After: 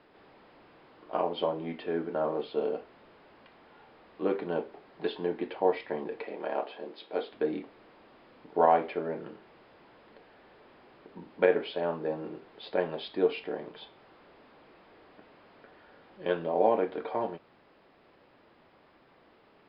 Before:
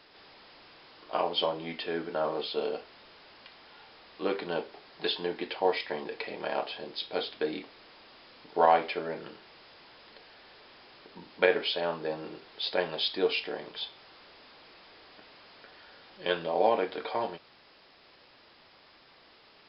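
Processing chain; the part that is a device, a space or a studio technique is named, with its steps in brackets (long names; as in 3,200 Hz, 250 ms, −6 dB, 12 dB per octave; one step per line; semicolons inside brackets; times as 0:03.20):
phone in a pocket (low-pass filter 3,000 Hz 12 dB per octave; parametric band 240 Hz +5 dB 2.6 octaves; high-shelf EQ 2,300 Hz −9 dB)
0:06.23–0:07.32: high-pass filter 270 Hz 12 dB per octave
level −1.5 dB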